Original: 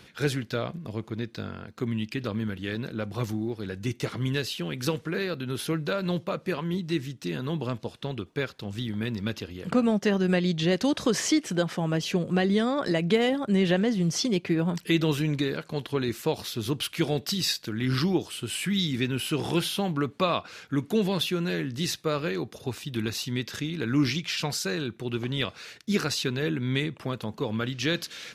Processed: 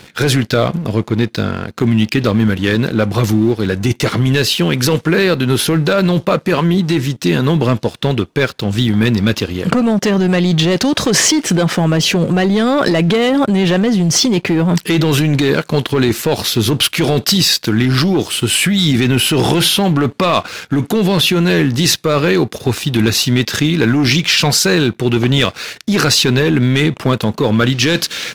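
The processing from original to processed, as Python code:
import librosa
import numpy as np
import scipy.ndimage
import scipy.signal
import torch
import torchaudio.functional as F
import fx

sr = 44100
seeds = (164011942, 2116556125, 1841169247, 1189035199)

p1 = fx.leveller(x, sr, passes=2)
p2 = fx.over_compress(p1, sr, threshold_db=-22.0, ratio=-0.5)
p3 = p1 + (p2 * librosa.db_to_amplitude(2.0))
y = p3 * librosa.db_to_amplitude(2.5)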